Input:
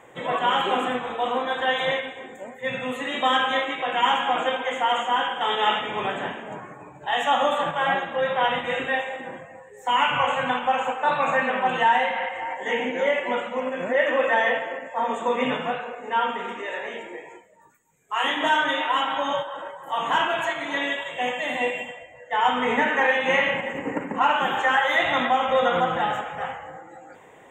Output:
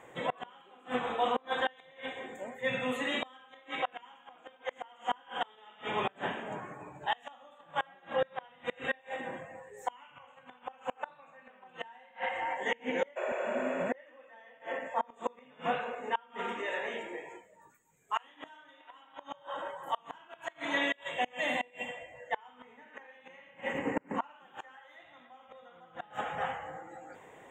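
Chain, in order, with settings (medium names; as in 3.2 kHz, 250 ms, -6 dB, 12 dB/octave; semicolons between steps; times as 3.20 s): inverted gate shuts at -15 dBFS, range -30 dB; spectral replace 13.19–13.82 s, 350–7700 Hz after; trim -4 dB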